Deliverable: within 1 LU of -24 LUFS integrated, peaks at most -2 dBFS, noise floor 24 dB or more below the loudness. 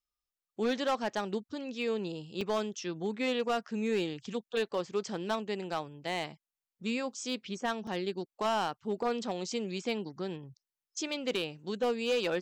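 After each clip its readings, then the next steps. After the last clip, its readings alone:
clipped 0.6%; flat tops at -24.0 dBFS; dropouts 2; longest dropout 3.4 ms; loudness -34.5 LUFS; peak -24.0 dBFS; loudness target -24.0 LUFS
-> clip repair -24 dBFS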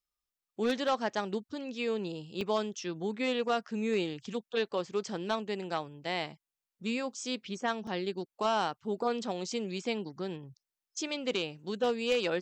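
clipped 0.0%; dropouts 2; longest dropout 3.4 ms
-> interpolate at 2.41/7.87, 3.4 ms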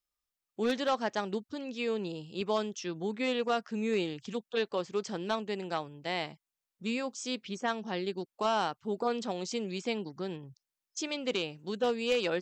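dropouts 0; loudness -34.0 LUFS; peak -15.5 dBFS; loudness target -24.0 LUFS
-> gain +10 dB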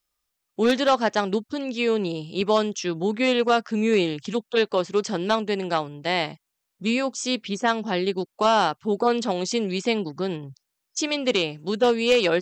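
loudness -24.0 LUFS; peak -5.5 dBFS; noise floor -80 dBFS

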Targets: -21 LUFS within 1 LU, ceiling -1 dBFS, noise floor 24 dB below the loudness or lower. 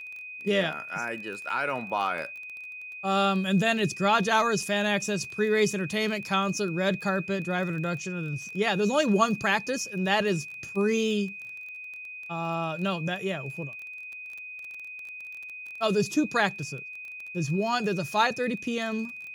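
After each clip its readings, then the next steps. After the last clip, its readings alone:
ticks 21/s; steady tone 2500 Hz; tone level -38 dBFS; loudness -27.5 LUFS; peak -9.5 dBFS; loudness target -21.0 LUFS
-> de-click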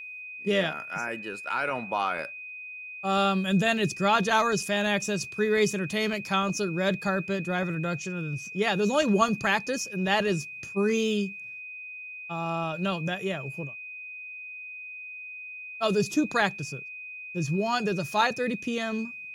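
ticks 0.052/s; steady tone 2500 Hz; tone level -38 dBFS
-> notch 2500 Hz, Q 30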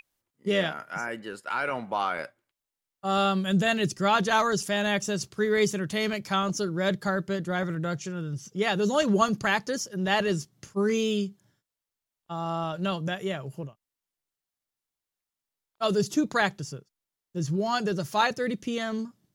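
steady tone none; loudness -27.5 LUFS; peak -9.5 dBFS; loudness target -21.0 LUFS
-> gain +6.5 dB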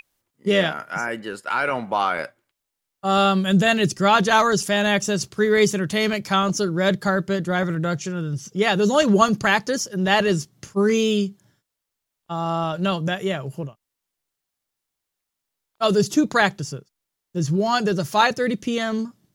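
loudness -21.0 LUFS; peak -3.0 dBFS; noise floor -83 dBFS

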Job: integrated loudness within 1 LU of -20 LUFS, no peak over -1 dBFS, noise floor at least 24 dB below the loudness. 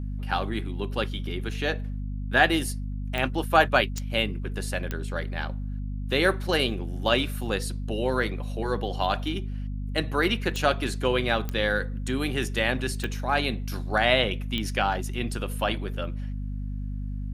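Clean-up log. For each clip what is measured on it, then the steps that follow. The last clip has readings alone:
clicks 7; hum 50 Hz; harmonics up to 250 Hz; hum level -29 dBFS; loudness -27.0 LUFS; peak -4.5 dBFS; loudness target -20.0 LUFS
-> de-click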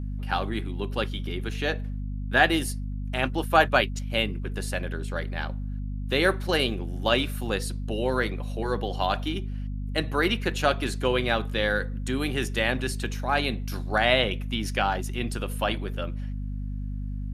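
clicks 0; hum 50 Hz; harmonics up to 250 Hz; hum level -29 dBFS
-> de-hum 50 Hz, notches 5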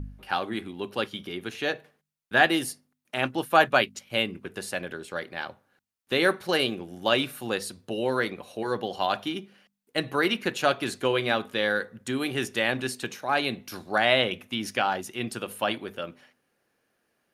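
hum none; loudness -27.5 LUFS; peak -5.0 dBFS; loudness target -20.0 LUFS
-> gain +7.5 dB; limiter -1 dBFS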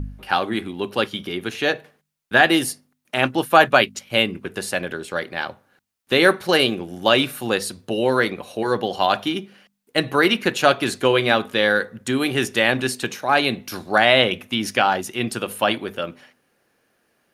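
loudness -20.5 LUFS; peak -1.0 dBFS; noise floor -70 dBFS

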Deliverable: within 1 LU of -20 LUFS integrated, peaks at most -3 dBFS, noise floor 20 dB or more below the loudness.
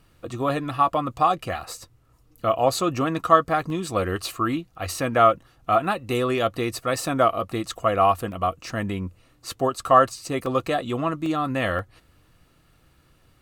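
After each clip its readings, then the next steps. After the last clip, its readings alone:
dropouts 5; longest dropout 1.6 ms; loudness -23.5 LUFS; peak -2.5 dBFS; loudness target -20.0 LUFS
-> interpolate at 3.7/8.32/10.46/11.26/11.79, 1.6 ms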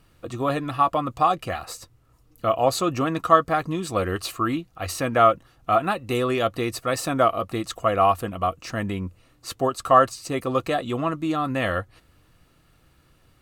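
dropouts 0; loudness -23.5 LUFS; peak -2.5 dBFS; loudness target -20.0 LUFS
-> gain +3.5 dB; limiter -3 dBFS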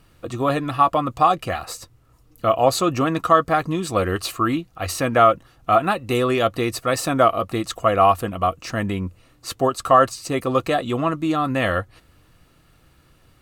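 loudness -20.5 LUFS; peak -3.0 dBFS; noise floor -56 dBFS

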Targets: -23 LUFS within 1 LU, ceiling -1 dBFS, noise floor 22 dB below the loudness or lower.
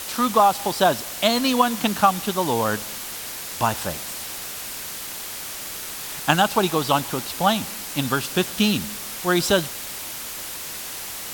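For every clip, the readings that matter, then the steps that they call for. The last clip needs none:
noise floor -33 dBFS; noise floor target -45 dBFS; loudness -23.0 LUFS; peak -1.5 dBFS; loudness target -23.0 LUFS
-> denoiser 12 dB, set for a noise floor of -33 dBFS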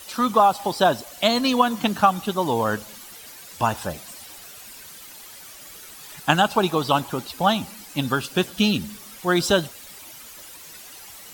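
noise floor -43 dBFS; noise floor target -44 dBFS
-> denoiser 6 dB, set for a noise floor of -43 dBFS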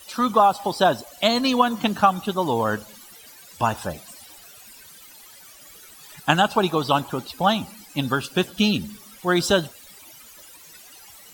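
noise floor -47 dBFS; loudness -22.0 LUFS; peak -1.5 dBFS; loudness target -23.0 LUFS
-> gain -1 dB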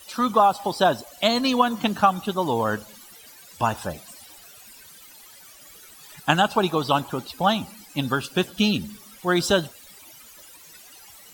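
loudness -23.0 LUFS; peak -2.5 dBFS; noise floor -48 dBFS

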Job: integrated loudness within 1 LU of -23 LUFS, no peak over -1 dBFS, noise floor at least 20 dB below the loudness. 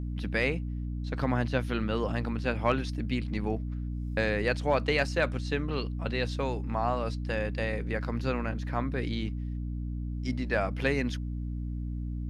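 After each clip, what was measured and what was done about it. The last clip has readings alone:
hum 60 Hz; harmonics up to 300 Hz; hum level -31 dBFS; loudness -31.0 LUFS; peak -13.5 dBFS; loudness target -23.0 LUFS
-> notches 60/120/180/240/300 Hz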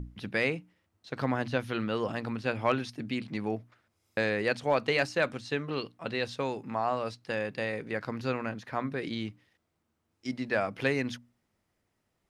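hum none; loudness -32.0 LUFS; peak -14.5 dBFS; loudness target -23.0 LUFS
-> gain +9 dB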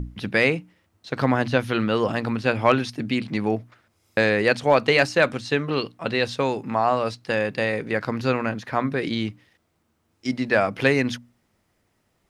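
loudness -23.0 LUFS; peak -5.5 dBFS; noise floor -70 dBFS

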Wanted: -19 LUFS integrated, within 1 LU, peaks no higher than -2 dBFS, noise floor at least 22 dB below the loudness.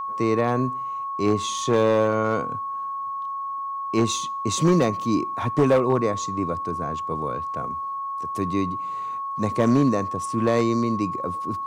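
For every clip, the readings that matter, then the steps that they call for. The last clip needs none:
clipped 0.7%; flat tops at -12.0 dBFS; steady tone 1100 Hz; tone level -27 dBFS; loudness -24.0 LUFS; peak -12.0 dBFS; loudness target -19.0 LUFS
-> clip repair -12 dBFS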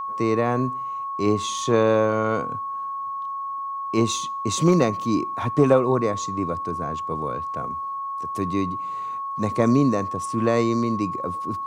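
clipped 0.0%; steady tone 1100 Hz; tone level -27 dBFS
-> notch 1100 Hz, Q 30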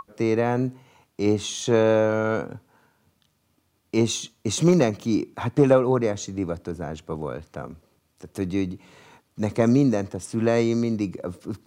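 steady tone none; loudness -23.5 LUFS; peak -4.5 dBFS; loudness target -19.0 LUFS
-> gain +4.5 dB; limiter -2 dBFS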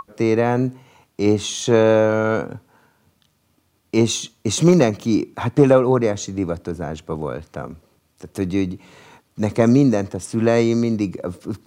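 loudness -19.5 LUFS; peak -2.0 dBFS; noise floor -65 dBFS

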